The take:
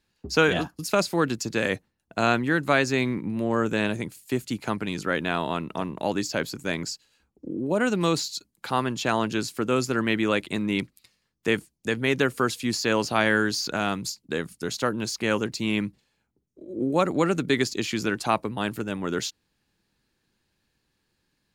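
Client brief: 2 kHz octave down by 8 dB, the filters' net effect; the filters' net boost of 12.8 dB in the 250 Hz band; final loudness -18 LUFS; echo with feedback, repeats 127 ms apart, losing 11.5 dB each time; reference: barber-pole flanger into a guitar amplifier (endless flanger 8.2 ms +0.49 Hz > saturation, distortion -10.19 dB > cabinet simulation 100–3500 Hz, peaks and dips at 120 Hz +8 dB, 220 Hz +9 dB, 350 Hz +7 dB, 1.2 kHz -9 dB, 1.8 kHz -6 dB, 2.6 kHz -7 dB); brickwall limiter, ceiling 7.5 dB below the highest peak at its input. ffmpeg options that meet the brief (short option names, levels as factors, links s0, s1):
-filter_complex "[0:a]equalizer=f=250:t=o:g=7.5,equalizer=f=2000:t=o:g=-3.5,alimiter=limit=0.224:level=0:latency=1,aecho=1:1:127|254|381:0.266|0.0718|0.0194,asplit=2[s0][s1];[s1]adelay=8.2,afreqshift=0.49[s2];[s0][s2]amix=inputs=2:normalize=1,asoftclip=threshold=0.0562,highpass=100,equalizer=f=120:t=q:w=4:g=8,equalizer=f=220:t=q:w=4:g=9,equalizer=f=350:t=q:w=4:g=7,equalizer=f=1200:t=q:w=4:g=-9,equalizer=f=1800:t=q:w=4:g=-6,equalizer=f=2600:t=q:w=4:g=-7,lowpass=f=3500:w=0.5412,lowpass=f=3500:w=1.3066,volume=2.66"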